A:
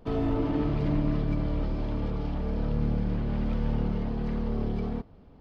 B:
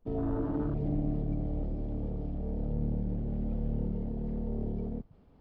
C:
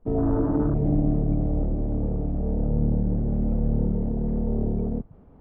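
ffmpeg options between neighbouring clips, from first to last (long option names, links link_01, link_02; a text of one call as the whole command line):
ffmpeg -i in.wav -af "afwtdn=0.0251,areverse,acompressor=mode=upward:threshold=-42dB:ratio=2.5,areverse,volume=-4.5dB" out.wav
ffmpeg -i in.wav -af "lowpass=1500,volume=9dB" out.wav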